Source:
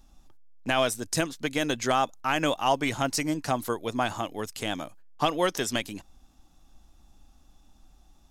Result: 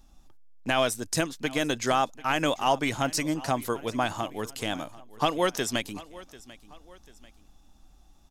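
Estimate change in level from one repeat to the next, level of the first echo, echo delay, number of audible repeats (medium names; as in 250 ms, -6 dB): -7.5 dB, -19.5 dB, 742 ms, 2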